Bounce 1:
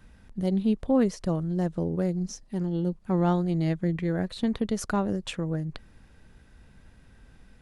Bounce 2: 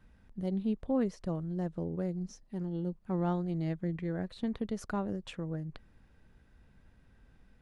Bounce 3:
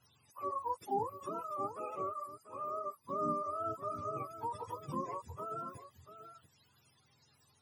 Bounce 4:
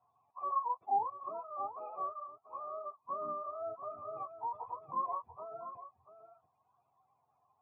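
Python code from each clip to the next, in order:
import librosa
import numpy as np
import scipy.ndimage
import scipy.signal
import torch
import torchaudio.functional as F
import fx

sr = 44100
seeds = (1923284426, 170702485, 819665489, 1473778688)

y1 = fx.high_shelf(x, sr, hz=4200.0, db=-8.0)
y1 = y1 * 10.0 ** (-7.5 / 20.0)
y2 = fx.octave_mirror(y1, sr, pivot_hz=460.0)
y2 = y2 + 10.0 ** (-12.0 / 20.0) * np.pad(y2, (int(689 * sr / 1000.0), 0))[:len(y2)]
y2 = y2 * 10.0 ** (-3.0 / 20.0)
y3 = fx.formant_cascade(y2, sr, vowel='a')
y3 = y3 * 10.0 ** (12.0 / 20.0)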